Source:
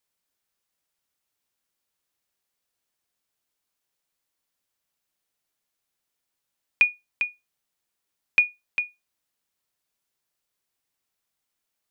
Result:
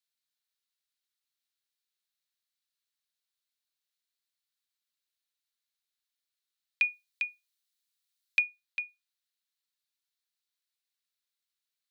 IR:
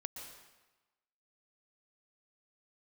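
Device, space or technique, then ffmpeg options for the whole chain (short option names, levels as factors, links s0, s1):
headphones lying on a table: -filter_complex "[0:a]highpass=f=1300:w=0.5412,highpass=f=1300:w=1.3066,equalizer=f=4000:t=o:w=0.51:g=9,asettb=1/sr,asplit=3[s0][s1][s2];[s0]atrim=end=6.844[s3];[s1]atrim=start=6.84:end=8.39,asetpts=PTS-STARTPTS,afade=t=in:d=0.004:c=qsin,afade=t=out:st=1.546:d=0.004:c=qsin,highshelf=f=3600:g=7[s4];[s2]atrim=start=8.386[s5];[s3][s4]acrossfade=d=0.004:c1=hsin:c2=qsin[s6];[s6][s5]acrossfade=d=0.004:c1=qsin:c2=hsin,volume=0.355"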